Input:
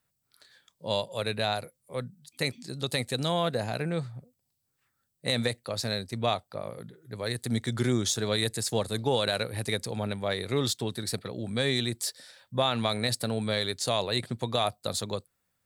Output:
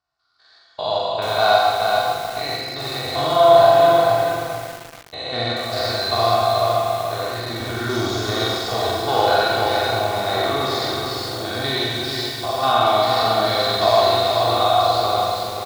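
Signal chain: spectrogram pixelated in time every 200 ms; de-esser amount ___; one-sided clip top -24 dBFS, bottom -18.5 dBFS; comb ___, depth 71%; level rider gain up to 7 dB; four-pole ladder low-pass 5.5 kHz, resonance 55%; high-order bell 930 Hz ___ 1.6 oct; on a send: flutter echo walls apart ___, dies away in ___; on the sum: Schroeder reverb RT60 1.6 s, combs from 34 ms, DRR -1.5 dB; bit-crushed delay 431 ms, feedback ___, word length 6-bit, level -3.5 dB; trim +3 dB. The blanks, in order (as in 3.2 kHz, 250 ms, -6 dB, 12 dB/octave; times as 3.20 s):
80%, 2.7 ms, +13 dB, 7.6 m, 0.47 s, 35%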